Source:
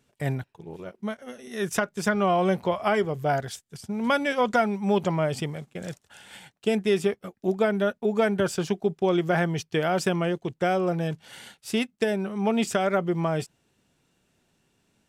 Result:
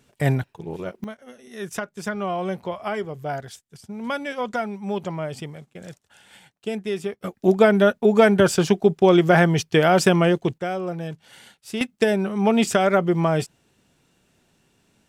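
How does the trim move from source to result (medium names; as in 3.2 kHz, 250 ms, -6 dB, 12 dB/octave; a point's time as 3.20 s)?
+7.5 dB
from 1.04 s -4 dB
from 7.21 s +8 dB
from 10.58 s -3 dB
from 11.81 s +5.5 dB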